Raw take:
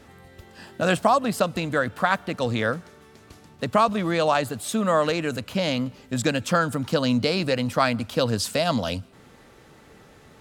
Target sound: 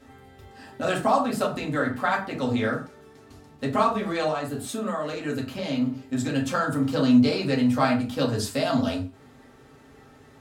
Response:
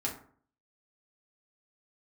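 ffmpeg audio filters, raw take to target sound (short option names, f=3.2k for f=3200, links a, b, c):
-filter_complex "[0:a]asettb=1/sr,asplit=3[a][b][c];[a]atrim=end=4.264[d];[b]atrim=start=4.26:end=6.32,asetpts=PTS-STARTPTS,afade=t=in:d=0.004:c=qsin,afade=t=out:st=2.056:d=0.004:c=qsin,acompressor=threshold=-23dB:ratio=6[e];[c]atrim=start=6.316[f];[d][e]acrossfade=d=0.004:c1=hsin:c2=qsin[g];[g][f]acrossfade=d=0.004:c1=qsin:c2=hsin[h];[1:a]atrim=start_sample=2205,atrim=end_sample=6174,asetrate=43218,aresample=44100[i];[h][i]afir=irnorm=-1:irlink=0,volume=-6dB"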